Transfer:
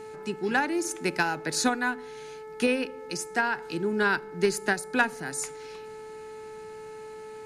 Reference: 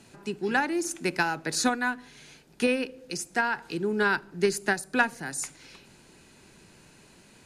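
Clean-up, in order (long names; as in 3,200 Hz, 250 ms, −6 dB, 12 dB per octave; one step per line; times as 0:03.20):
clipped peaks rebuilt −14 dBFS
hum removal 434.1 Hz, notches 5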